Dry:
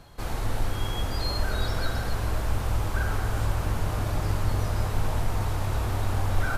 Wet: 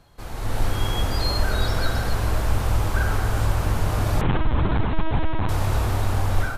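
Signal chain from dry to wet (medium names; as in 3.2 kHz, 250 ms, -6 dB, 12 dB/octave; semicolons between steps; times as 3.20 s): 4.21–5.49 s: LPC vocoder at 8 kHz pitch kept; level rider gain up to 11.5 dB; trim -5 dB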